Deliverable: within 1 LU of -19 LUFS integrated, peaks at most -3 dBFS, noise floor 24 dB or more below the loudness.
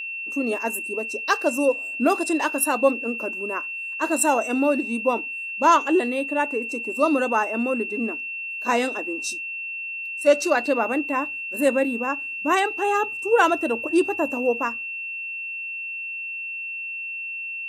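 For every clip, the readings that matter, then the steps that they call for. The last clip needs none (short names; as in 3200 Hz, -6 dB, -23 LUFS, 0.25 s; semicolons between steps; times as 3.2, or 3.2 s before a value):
steady tone 2700 Hz; tone level -29 dBFS; loudness -23.5 LUFS; peak -6.0 dBFS; loudness target -19.0 LUFS
-> notch 2700 Hz, Q 30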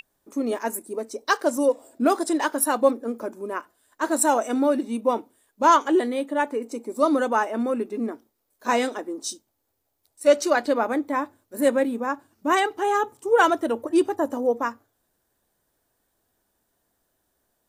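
steady tone none; loudness -23.5 LUFS; peak -5.5 dBFS; loudness target -19.0 LUFS
-> gain +4.5 dB; limiter -3 dBFS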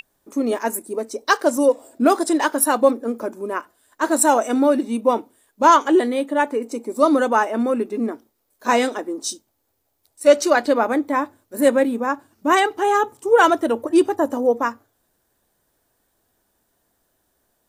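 loudness -19.5 LUFS; peak -3.0 dBFS; noise floor -70 dBFS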